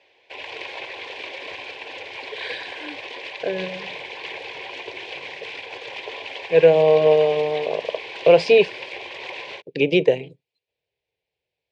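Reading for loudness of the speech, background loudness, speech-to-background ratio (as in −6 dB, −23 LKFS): −18.0 LKFS, −33.0 LKFS, 15.0 dB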